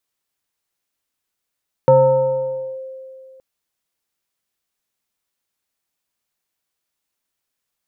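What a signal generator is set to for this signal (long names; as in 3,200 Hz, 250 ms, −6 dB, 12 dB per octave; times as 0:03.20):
two-operator FM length 1.52 s, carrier 526 Hz, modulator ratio 0.74, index 0.67, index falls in 0.92 s linear, decay 2.50 s, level −6 dB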